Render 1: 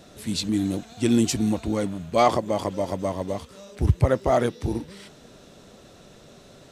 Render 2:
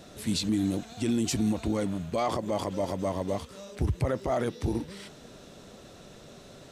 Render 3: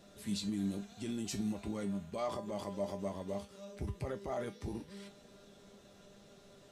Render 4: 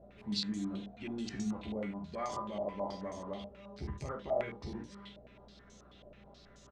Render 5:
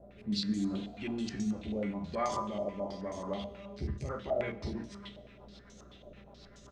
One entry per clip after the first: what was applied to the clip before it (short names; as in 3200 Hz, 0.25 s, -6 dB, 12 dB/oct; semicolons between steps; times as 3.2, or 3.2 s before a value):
limiter -19 dBFS, peak gain reduction 11.5 dB
resonator 200 Hz, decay 0.26 s, harmonics all, mix 80%; gain -1 dB
on a send: early reflections 14 ms -4.5 dB, 48 ms -6.5 dB, 74 ms -8.5 dB; on the sum: hum 60 Hz, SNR 21 dB; stepped low-pass 9.3 Hz 630–6500 Hz; gain -4 dB
rotary speaker horn 0.8 Hz, later 8 Hz, at 3.91; reverb RT60 1.7 s, pre-delay 6 ms, DRR 14.5 dB; gain +5.5 dB